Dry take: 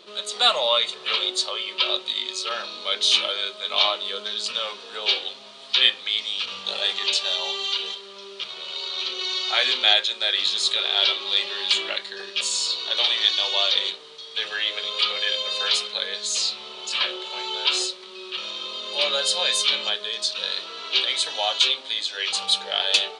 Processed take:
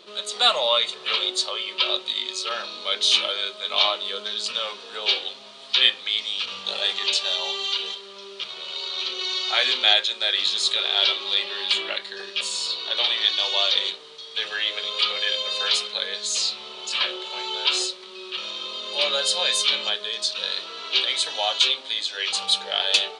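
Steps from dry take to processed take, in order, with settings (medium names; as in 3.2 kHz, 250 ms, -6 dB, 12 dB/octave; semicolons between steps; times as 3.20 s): 11.34–13.39 s: dynamic bell 6.7 kHz, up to -6 dB, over -38 dBFS, Q 1.4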